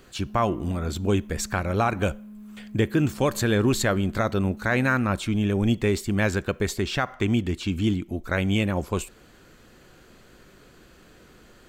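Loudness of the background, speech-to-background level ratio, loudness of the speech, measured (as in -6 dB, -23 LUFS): -43.5 LUFS, 18.5 dB, -25.0 LUFS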